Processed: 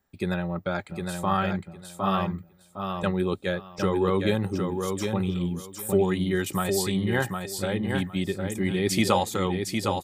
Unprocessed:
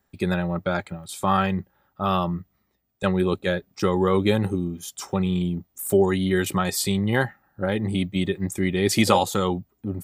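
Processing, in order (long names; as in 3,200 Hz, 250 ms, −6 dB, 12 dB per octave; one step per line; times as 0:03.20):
repeating echo 759 ms, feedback 19%, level −5 dB
level −4 dB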